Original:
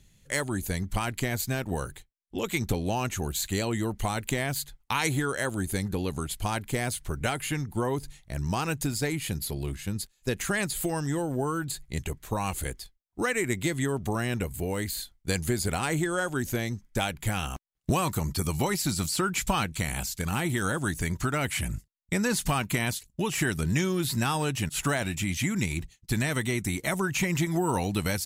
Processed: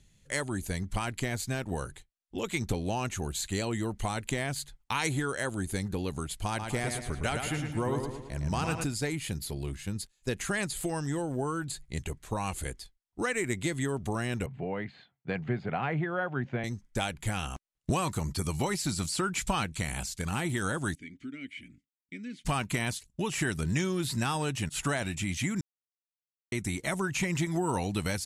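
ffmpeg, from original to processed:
-filter_complex "[0:a]asettb=1/sr,asplit=3[s0][s1][s2];[s0]atrim=end=6.484[s3];[s1]atrim=start=6.48:end=8.84,asetpts=PTS-STARTPTS,afade=t=in:d=0.004:c=qsin,afade=t=out:st=2.356:d=0.004:c=qsin,asplit=2[s4][s5];[s5]adelay=110,lowpass=f=4900:p=1,volume=0.562,asplit=2[s6][s7];[s7]adelay=110,lowpass=f=4900:p=1,volume=0.51,asplit=2[s8][s9];[s9]adelay=110,lowpass=f=4900:p=1,volume=0.51,asplit=2[s10][s11];[s11]adelay=110,lowpass=f=4900:p=1,volume=0.51,asplit=2[s12][s13];[s13]adelay=110,lowpass=f=4900:p=1,volume=0.51,asplit=2[s14][s15];[s15]adelay=110,lowpass=f=4900:p=1,volume=0.51[s16];[s4][s6][s8][s10][s12][s14][s16]amix=inputs=7:normalize=0,atrim=end_sample=104076[s17];[s2]atrim=start=8.836[s18];[s3][s17]acrossfade=d=0.004:c1=hsin:c2=qsin[s19];[s19][s18]acrossfade=d=0.004:c1=qsin:c2=hsin,asettb=1/sr,asplit=3[s20][s21][s22];[s20]atrim=end=14.464[s23];[s21]atrim=start=14.46:end=16.64,asetpts=PTS-STARTPTS,afade=t=in:d=0.004:c=qsin,afade=t=out:st=2.176:d=0.004:c=qsin,highpass=f=130:w=0.5412,highpass=f=130:w=1.3066,equalizer=f=130:t=q:w=4:g=8,equalizer=f=320:t=q:w=4:g=-5,equalizer=f=720:t=q:w=4:g=5,lowpass=f=2600:w=0.5412,lowpass=f=2600:w=1.3066[s24];[s22]atrim=start=16.636[s25];[s23][s24]acrossfade=d=0.004:c1=hsin:c2=qsin[s26];[s26][s25]acrossfade=d=0.004:c1=qsin:c2=hsin,asettb=1/sr,asplit=3[s27][s28][s29];[s27]atrim=end=20.954[s30];[s28]atrim=start=20.95:end=22.45,asetpts=PTS-STARTPTS,afade=t=in:d=0.004:c=qsin,afade=t=out:st=1.496:d=0.004:c=qsin,asplit=3[s31][s32][s33];[s31]bandpass=f=270:t=q:w=8,volume=1[s34];[s32]bandpass=f=2290:t=q:w=8,volume=0.501[s35];[s33]bandpass=f=3010:t=q:w=8,volume=0.355[s36];[s34][s35][s36]amix=inputs=3:normalize=0[s37];[s29]atrim=start=22.446[s38];[s30][s37]acrossfade=d=0.004:c1=hsin:c2=qsin[s39];[s39][s38]acrossfade=d=0.004:c1=qsin:c2=hsin,asplit=3[s40][s41][s42];[s40]atrim=end=25.61,asetpts=PTS-STARTPTS,afade=t=out:st=25.606:d=0.004:c=hsin[s43];[s41]atrim=start=25.61:end=26.52,asetpts=PTS-STARTPTS,volume=0[s44];[s42]atrim=start=26.52,asetpts=PTS-STARTPTS,afade=t=in:d=0.004:c=hsin[s45];[s43][s44][s45]concat=n=3:v=0:a=1,lowpass=f=11000:w=0.5412,lowpass=f=11000:w=1.3066,volume=0.708"

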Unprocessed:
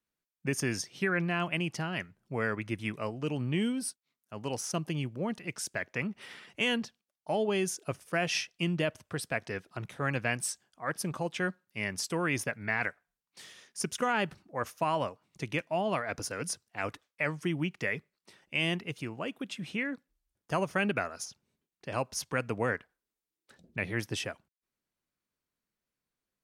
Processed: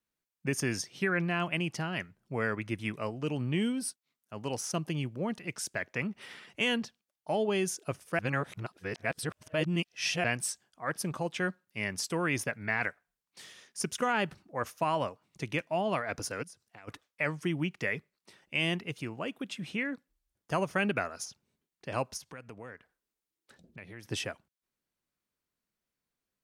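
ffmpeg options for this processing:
-filter_complex "[0:a]asplit=3[s0][s1][s2];[s0]afade=t=out:st=16.42:d=0.02[s3];[s1]acompressor=threshold=0.00447:ratio=16:attack=3.2:release=140:knee=1:detection=peak,afade=t=in:st=16.42:d=0.02,afade=t=out:st=16.87:d=0.02[s4];[s2]afade=t=in:st=16.87:d=0.02[s5];[s3][s4][s5]amix=inputs=3:normalize=0,asplit=3[s6][s7][s8];[s6]afade=t=out:st=22.16:d=0.02[s9];[s7]acompressor=threshold=0.00355:ratio=2.5:attack=3.2:release=140:knee=1:detection=peak,afade=t=in:st=22.16:d=0.02,afade=t=out:st=24.04:d=0.02[s10];[s8]afade=t=in:st=24.04:d=0.02[s11];[s9][s10][s11]amix=inputs=3:normalize=0,asplit=3[s12][s13][s14];[s12]atrim=end=8.192[s15];[s13]atrim=start=8.188:end=10.242,asetpts=PTS-STARTPTS,areverse[s16];[s14]atrim=start=10.238[s17];[s15][s16]acrossfade=d=0.004:c1=hsin:c2=hsin[s18];[s18][s17]acrossfade=d=0.004:c1=hsin:c2=hsin"

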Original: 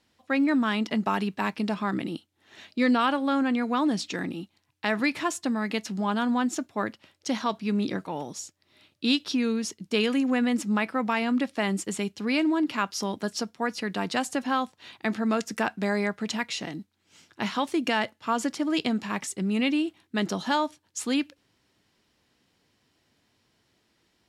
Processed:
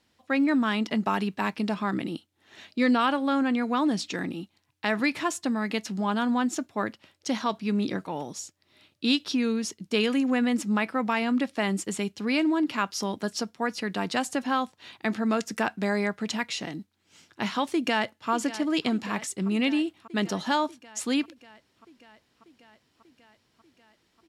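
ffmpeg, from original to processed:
-filter_complex "[0:a]asplit=2[s0][s1];[s1]afade=t=in:st=17.73:d=0.01,afade=t=out:st=18.3:d=0.01,aecho=0:1:590|1180|1770|2360|2950|3540|4130|4720|5310|5900|6490:0.199526|0.149645|0.112234|0.0841751|0.0631313|0.0473485|0.0355114|0.0266335|0.0199752|0.0149814|0.011236[s2];[s0][s2]amix=inputs=2:normalize=0"

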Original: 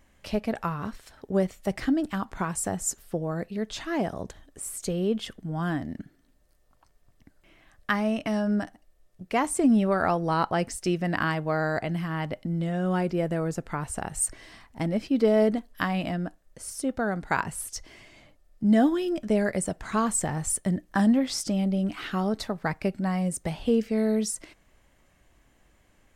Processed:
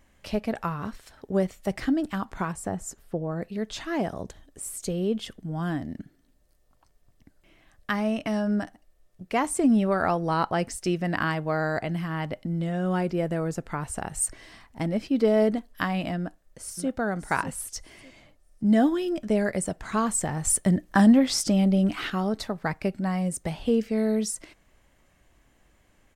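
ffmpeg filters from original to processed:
-filter_complex "[0:a]asettb=1/sr,asplit=3[s0][s1][s2];[s0]atrim=end=2.524[s3];[s1]atrim=start=2.52:end=3.42,asetpts=PTS-STARTPTS,afade=t=in:d=0.004:c=qsin,afade=t=out:st=0.896:d=0.004:c=qsin,highshelf=f=2400:g=-10[s4];[s2]atrim=start=3.416[s5];[s3][s4]acrossfade=d=0.004:c1=hsin:c2=qsin[s6];[s6][s5]acrossfade=d=0.004:c1=qsin:c2=hsin,asettb=1/sr,asplit=3[s7][s8][s9];[s7]atrim=end=4.214[s10];[s8]atrim=start=4.21:end=7.98,asetpts=PTS-STARTPTS,afade=t=in:d=0.004:c=qsin,afade=t=out:st=3.766:d=0.004:c=qsin,equalizer=f=1400:t=o:w=1.8:g=-3[s11];[s9]atrim=start=7.976[s12];[s10][s11]acrossfade=d=0.004:c1=hsin:c2=qsin[s13];[s13][s12]acrossfade=d=0.004:c1=qsin:c2=hsin,asplit=2[s14][s15];[s15]afade=t=in:st=16.17:d=0.01,afade=t=out:st=16.94:d=0.01,aecho=0:1:600|1200|1800:0.298538|0.0597077|0.0119415[s16];[s14][s16]amix=inputs=2:normalize=0,asplit=3[s17][s18][s19];[s17]atrim=end=20.452[s20];[s18]atrim=start=20.448:end=22.102,asetpts=PTS-STARTPTS,volume=1.68[s21];[s19]atrim=start=22.098[s22];[s20][s21]acrossfade=d=0.004:c1=hsin:c2=hsin[s23];[s23][s22]acrossfade=d=0.004:c1=hsin:c2=hsin"

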